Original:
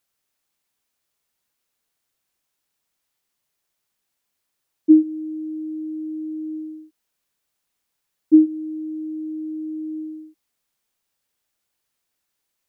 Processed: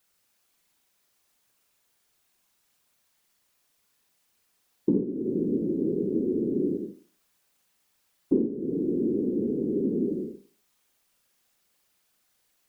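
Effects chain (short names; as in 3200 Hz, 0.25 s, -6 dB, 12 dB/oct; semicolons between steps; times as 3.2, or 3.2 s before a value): compressor 4:1, threshold -32 dBFS, peak gain reduction 19.5 dB; whisperiser; Schroeder reverb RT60 0.4 s, combs from 31 ms, DRR 4 dB; gain +5 dB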